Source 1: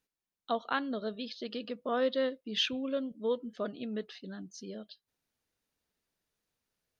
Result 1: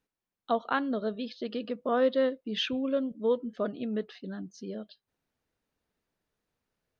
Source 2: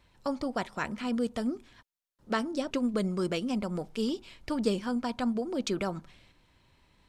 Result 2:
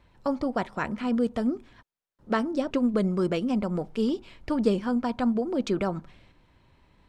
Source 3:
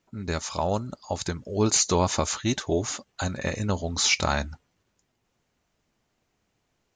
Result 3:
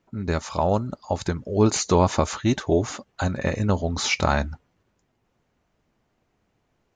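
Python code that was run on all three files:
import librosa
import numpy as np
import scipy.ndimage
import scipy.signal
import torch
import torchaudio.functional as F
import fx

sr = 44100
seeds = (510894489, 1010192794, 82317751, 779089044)

y = fx.high_shelf(x, sr, hz=2900.0, db=-11.5)
y = y * librosa.db_to_amplitude(5.0)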